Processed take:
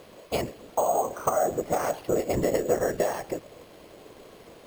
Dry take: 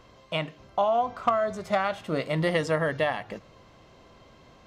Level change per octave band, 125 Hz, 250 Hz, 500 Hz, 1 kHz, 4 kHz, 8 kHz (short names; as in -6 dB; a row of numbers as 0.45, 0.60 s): -4.0, +0.5, +1.5, -1.0, -6.0, +14.0 dB